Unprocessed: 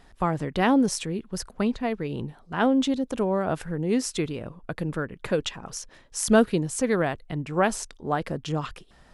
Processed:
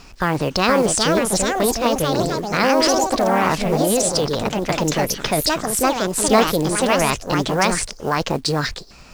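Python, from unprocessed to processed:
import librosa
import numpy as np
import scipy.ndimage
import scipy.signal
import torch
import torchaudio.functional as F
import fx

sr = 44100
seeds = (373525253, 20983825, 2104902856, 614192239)

p1 = fx.formant_shift(x, sr, semitones=6)
p2 = fx.peak_eq(p1, sr, hz=5000.0, db=9.0, octaves=0.68)
p3 = fx.over_compress(p2, sr, threshold_db=-29.0, ratio=-1.0)
p4 = p2 + (p3 * 10.0 ** (0.0 / 20.0))
p5 = scipy.signal.sosfilt(scipy.signal.butter(12, 9900.0, 'lowpass', fs=sr, output='sos'), p4)
p6 = fx.quant_companded(p5, sr, bits=6)
p7 = fx.echo_pitch(p6, sr, ms=508, semitones=3, count=2, db_per_echo=-3.0)
y = p7 * 10.0 ** (1.5 / 20.0)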